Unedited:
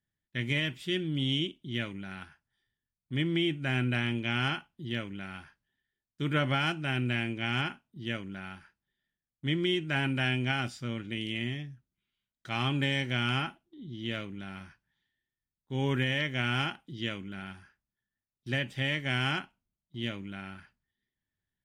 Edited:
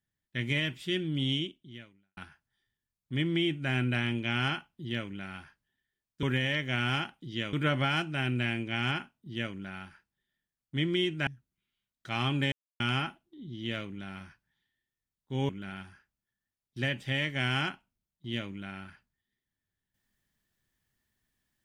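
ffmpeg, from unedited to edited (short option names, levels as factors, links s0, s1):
-filter_complex "[0:a]asplit=8[s0][s1][s2][s3][s4][s5][s6][s7];[s0]atrim=end=2.17,asetpts=PTS-STARTPTS,afade=t=out:st=1.31:d=0.86:c=qua[s8];[s1]atrim=start=2.17:end=6.232,asetpts=PTS-STARTPTS,afade=t=in:d=0.004:c=hsin[s9];[s2]atrim=start=15.888:end=17.192[s10];[s3]atrim=start=6.228:end=9.972[s11];[s4]atrim=start=11.668:end=12.92,asetpts=PTS-STARTPTS,afade=t=out:st=1.248:d=0.004:c=hsin[s12];[s5]atrim=start=12.92:end=13.2,asetpts=PTS-STARTPTS,volume=0[s13];[s6]atrim=start=13.2:end=15.892,asetpts=PTS-STARTPTS,afade=t=in:d=0.004:c=hsin[s14];[s7]atrim=start=17.188[s15];[s8][s9]concat=n=2:v=0:a=1[s16];[s16][s10]acrossfade=d=0.004:c1=hsin:c2=hsin[s17];[s17][s11]acrossfade=d=0.004:c1=hsin:c2=hsin[s18];[s12][s13][s14]concat=n=3:v=0:a=1[s19];[s18][s19]acrossfade=d=0.004:c1=hsin:c2=hsin[s20];[s20][s15]acrossfade=d=0.004:c1=hsin:c2=hsin"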